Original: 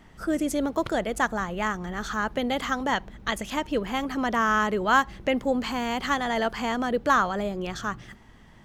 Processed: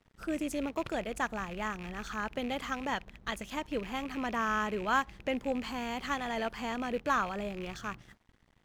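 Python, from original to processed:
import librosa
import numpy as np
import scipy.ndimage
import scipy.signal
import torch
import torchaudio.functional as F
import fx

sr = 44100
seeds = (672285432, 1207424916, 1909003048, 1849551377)

y = fx.rattle_buzz(x, sr, strikes_db=-38.0, level_db=-26.0)
y = fx.low_shelf(y, sr, hz=130.0, db=2.5)
y = np.sign(y) * np.maximum(np.abs(y) - 10.0 ** (-49.5 / 20.0), 0.0)
y = y * 10.0 ** (-8.0 / 20.0)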